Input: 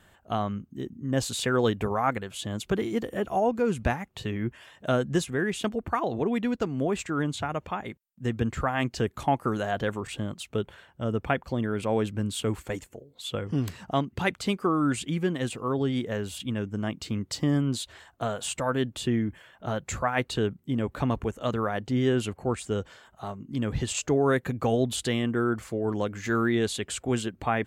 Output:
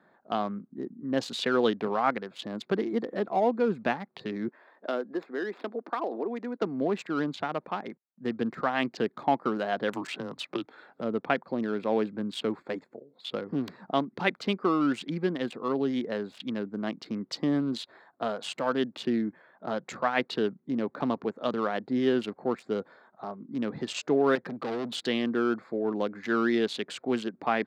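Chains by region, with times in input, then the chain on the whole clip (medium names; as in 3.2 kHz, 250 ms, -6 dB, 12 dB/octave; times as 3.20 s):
4.48–6.62 s: median filter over 9 samples + compression 2:1, threshold -27 dBFS + high-pass 270 Hz 24 dB/octave
9.93–11.01 s: treble shelf 3.1 kHz +6 dB + frequency shift -92 Hz + three bands compressed up and down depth 100%
24.35–24.95 s: hum notches 50/100 Hz + overload inside the chain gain 28.5 dB
whole clip: local Wiener filter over 15 samples; high-pass 190 Hz 24 dB/octave; resonant high shelf 6 kHz -10.5 dB, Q 1.5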